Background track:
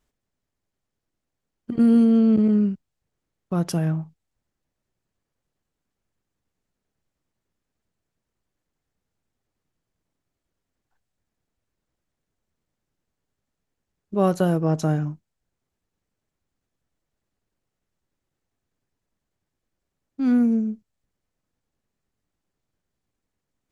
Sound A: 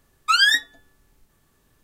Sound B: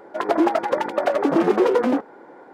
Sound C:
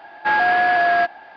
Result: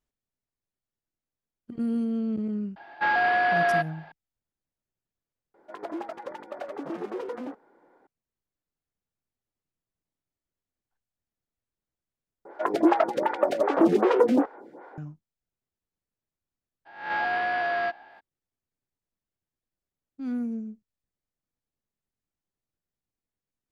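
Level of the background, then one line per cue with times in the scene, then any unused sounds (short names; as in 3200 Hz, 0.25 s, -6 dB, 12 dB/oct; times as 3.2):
background track -11.5 dB
2.76 add C -6 dB
5.54 add B -16.5 dB
12.45 replace with B + photocell phaser 2.6 Hz
16.85 add C -10.5 dB, fades 0.02 s + spectral swells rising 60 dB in 0.53 s
not used: A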